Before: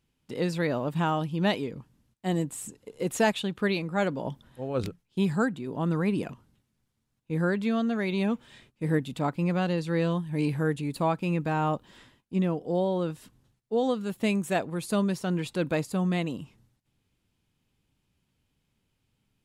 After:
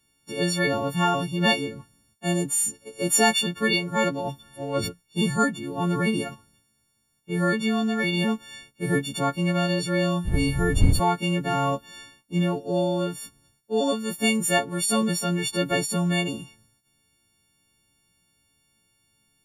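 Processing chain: partials quantised in pitch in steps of 4 st; 10.24–10.99 s: wind noise 83 Hz -23 dBFS; trim +2.5 dB

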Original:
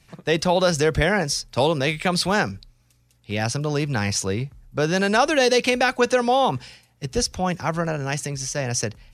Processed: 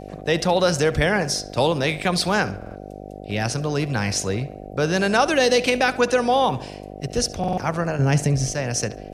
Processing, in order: 7.99–8.53 s: bass shelf 460 Hz +12 dB; on a send: tape echo 70 ms, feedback 53%, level -16 dB, low-pass 4.5 kHz; on the sum: mains buzz 50 Hz, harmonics 15, -37 dBFS 0 dB/octave; buffer glitch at 2.57/7.39 s, samples 2048, times 3

